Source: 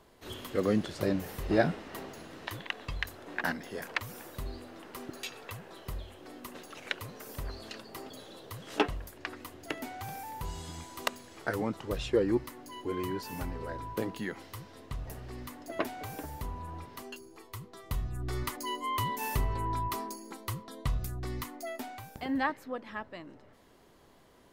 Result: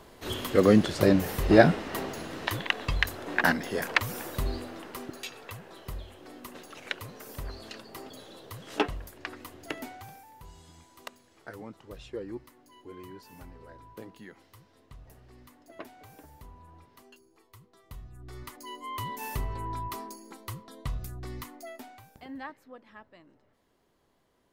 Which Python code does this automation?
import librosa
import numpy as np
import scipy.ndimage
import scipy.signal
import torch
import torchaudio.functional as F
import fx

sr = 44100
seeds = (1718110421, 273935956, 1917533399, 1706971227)

y = fx.gain(x, sr, db=fx.line((4.55, 8.5), (5.23, 0.5), (9.82, 0.5), (10.26, -11.0), (18.17, -11.0), (19.16, -2.5), (21.51, -2.5), (22.39, -10.5)))